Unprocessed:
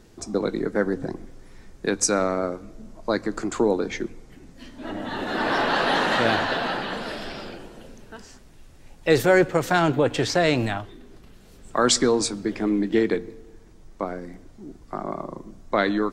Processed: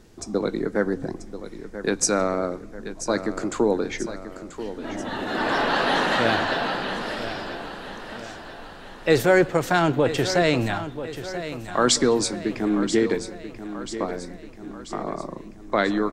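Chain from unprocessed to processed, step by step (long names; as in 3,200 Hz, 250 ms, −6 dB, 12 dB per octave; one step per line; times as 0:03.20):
repeating echo 986 ms, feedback 52%, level −12 dB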